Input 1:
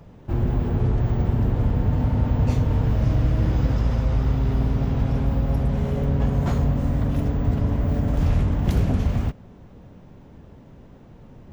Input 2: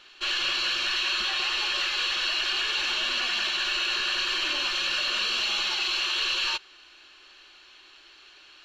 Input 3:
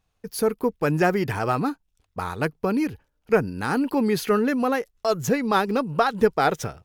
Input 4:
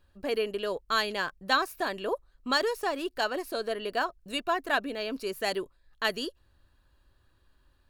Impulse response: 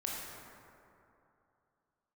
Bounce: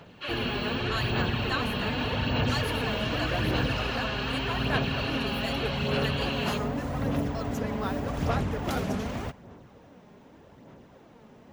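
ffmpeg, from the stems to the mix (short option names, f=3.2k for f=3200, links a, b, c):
-filter_complex "[0:a]volume=0dB,asplit=2[a][b];[b]volume=-22dB[c];[1:a]lowpass=2.5k,volume=-4dB[d];[2:a]adelay=2300,volume=-14.5dB[e];[3:a]volume=-7.5dB[f];[4:a]atrim=start_sample=2205[g];[c][g]afir=irnorm=-1:irlink=0[h];[a][d][e][f][h]amix=inputs=5:normalize=0,highpass=f=450:p=1,aphaser=in_gain=1:out_gain=1:delay=4.9:decay=0.37:speed=0.84:type=sinusoidal"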